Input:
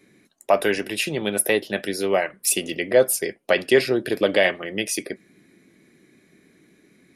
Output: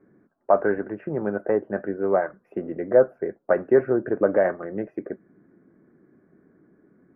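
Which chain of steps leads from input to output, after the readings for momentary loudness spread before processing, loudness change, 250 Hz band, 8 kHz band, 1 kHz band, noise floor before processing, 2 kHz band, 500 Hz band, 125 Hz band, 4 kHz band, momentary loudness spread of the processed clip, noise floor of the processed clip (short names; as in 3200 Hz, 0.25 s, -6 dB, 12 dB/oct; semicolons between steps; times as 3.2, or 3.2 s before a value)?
8 LU, -2.0 dB, -0.5 dB, under -40 dB, -0.5 dB, -59 dBFS, -9.5 dB, 0.0 dB, -1.0 dB, under -40 dB, 13 LU, -66 dBFS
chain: elliptic low-pass 1500 Hz, stop band 60 dB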